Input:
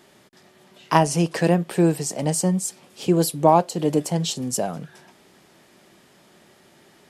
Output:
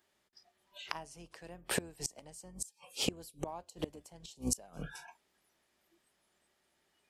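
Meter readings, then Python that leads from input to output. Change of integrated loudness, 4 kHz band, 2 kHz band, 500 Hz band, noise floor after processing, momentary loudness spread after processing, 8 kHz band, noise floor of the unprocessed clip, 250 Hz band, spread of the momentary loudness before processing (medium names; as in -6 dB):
-18.5 dB, -9.5 dB, -11.5 dB, -23.0 dB, -77 dBFS, 16 LU, -12.0 dB, -55 dBFS, -21.5 dB, 9 LU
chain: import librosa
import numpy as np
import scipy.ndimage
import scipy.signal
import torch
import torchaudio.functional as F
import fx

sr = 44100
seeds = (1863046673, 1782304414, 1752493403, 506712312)

y = fx.octave_divider(x, sr, octaves=2, level_db=-4.0)
y = fx.noise_reduce_blind(y, sr, reduce_db=23)
y = fx.low_shelf(y, sr, hz=440.0, db=-10.5)
y = fx.gate_flip(y, sr, shuts_db=-20.0, range_db=-29)
y = y * 10.0 ** (3.0 / 20.0)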